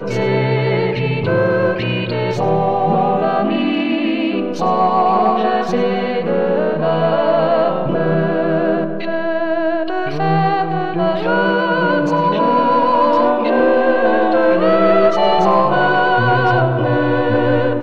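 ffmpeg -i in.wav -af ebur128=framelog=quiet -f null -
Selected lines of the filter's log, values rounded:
Integrated loudness:
  I:         -15.5 LUFS
  Threshold: -25.5 LUFS
Loudness range:
  LRA:         4.0 LU
  Threshold: -35.5 LUFS
  LRA low:   -17.4 LUFS
  LRA high:  -13.4 LUFS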